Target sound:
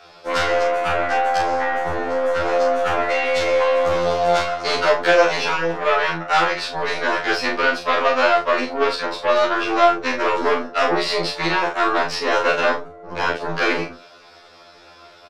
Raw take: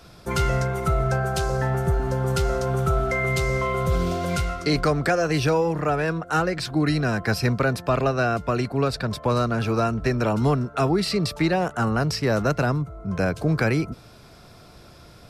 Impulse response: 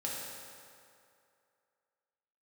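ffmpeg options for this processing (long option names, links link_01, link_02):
-filter_complex "[0:a]aeval=exprs='0.335*(cos(1*acos(clip(val(0)/0.335,-1,1)))-cos(1*PI/2))+0.0668*(cos(6*acos(clip(val(0)/0.335,-1,1)))-cos(6*PI/2))':channel_layout=same,acrossover=split=390 5600:gain=0.0891 1 0.0891[link_01][link_02][link_03];[link_01][link_02][link_03]amix=inputs=3:normalize=0,asettb=1/sr,asplit=3[link_04][link_05][link_06];[link_04]atrim=end=1.374[link_07];[link_05]atrim=start=1.37:end=2.46,asetpts=PTS-STARTPTS,afade=type=in:duration=0.004:curve=qsin,afade=type=out:start_time=1.086:duration=0.004:curve=qsin,acrossover=split=2700[link_08][link_09];[link_09]acompressor=threshold=-45dB:ratio=4:attack=1:release=60[link_10];[link_08][link_10]amix=inputs=2:normalize=0[link_11];[link_06]atrim=start=2.456[link_12];[link_07][link_11]acrossfade=duration=0.004:curve1=hsin:curve2=qsin[link_13];[link_13][link_12]acrossfade=duration=0.004:curve1=qsin:curve2=hsin,aecho=1:1:36|73:0.631|0.211,afftfilt=real='re*2*eq(mod(b,4),0)':imag='im*2*eq(mod(b,4),0)':win_size=2048:overlap=0.75,volume=7.5dB"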